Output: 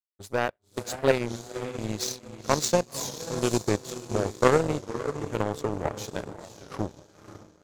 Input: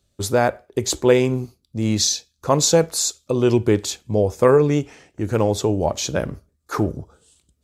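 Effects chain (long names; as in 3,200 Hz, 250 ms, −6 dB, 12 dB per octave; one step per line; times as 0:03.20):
feedback delay with all-pass diffusion 534 ms, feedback 51%, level −5 dB
power curve on the samples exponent 2
wow of a warped record 33 1/3 rpm, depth 160 cents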